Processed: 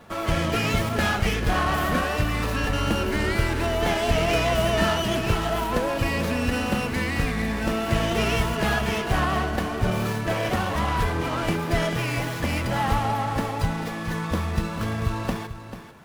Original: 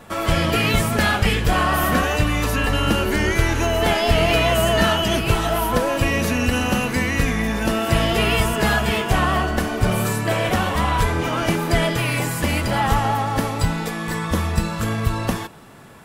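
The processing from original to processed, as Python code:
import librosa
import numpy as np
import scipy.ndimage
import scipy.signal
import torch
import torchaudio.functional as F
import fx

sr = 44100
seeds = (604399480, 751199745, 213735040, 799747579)

y = x + 10.0 ** (-11.5 / 20.0) * np.pad(x, (int(441 * sr / 1000.0), 0))[:len(x)]
y = fx.running_max(y, sr, window=5)
y = F.gain(torch.from_numpy(y), -4.5).numpy()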